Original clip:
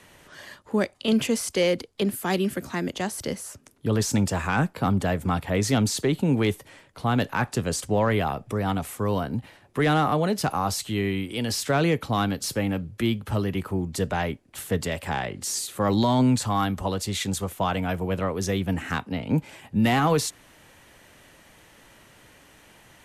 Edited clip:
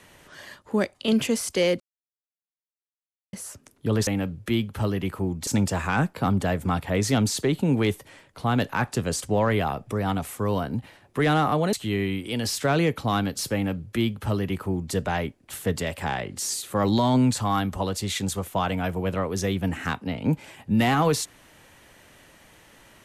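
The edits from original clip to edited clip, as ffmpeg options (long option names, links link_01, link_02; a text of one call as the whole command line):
ffmpeg -i in.wav -filter_complex "[0:a]asplit=6[link_01][link_02][link_03][link_04][link_05][link_06];[link_01]atrim=end=1.8,asetpts=PTS-STARTPTS,afade=type=out:start_time=1.796:duration=0.004:curve=hsin[link_07];[link_02]atrim=start=1.8:end=3.33,asetpts=PTS-STARTPTS,volume=0[link_08];[link_03]atrim=start=3.33:end=4.072,asetpts=PTS-STARTPTS,afade=type=in:duration=0.004:curve=hsin[link_09];[link_04]atrim=start=12.588:end=13.992[link_10];[link_05]atrim=start=4.068:end=10.332[link_11];[link_06]atrim=start=10.778[link_12];[link_07][link_08][link_09]concat=n=3:v=0:a=1[link_13];[link_13][link_10]acrossfade=duration=0.004:curve1=hsin:curve2=hsin[link_14];[link_14][link_11]acrossfade=duration=0.004:curve1=hsin:curve2=hsin[link_15];[link_15][link_12]acrossfade=duration=0.004:curve1=hsin:curve2=hsin" out.wav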